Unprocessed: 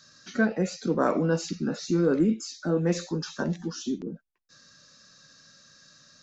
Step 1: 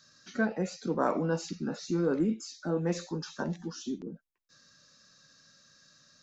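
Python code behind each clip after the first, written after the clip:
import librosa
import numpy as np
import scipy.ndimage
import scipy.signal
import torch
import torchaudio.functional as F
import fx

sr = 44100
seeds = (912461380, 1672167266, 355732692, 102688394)

y = fx.dynamic_eq(x, sr, hz=880.0, q=2.3, threshold_db=-47.0, ratio=4.0, max_db=6)
y = F.gain(torch.from_numpy(y), -5.5).numpy()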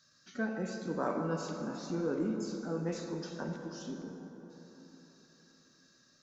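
y = fx.rev_plate(x, sr, seeds[0], rt60_s=4.2, hf_ratio=0.4, predelay_ms=0, drr_db=3.0)
y = F.gain(torch.from_numpy(y), -6.5).numpy()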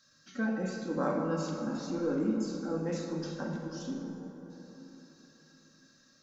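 y = fx.room_shoebox(x, sr, seeds[1], volume_m3=2300.0, walls='furnished', distance_m=2.2)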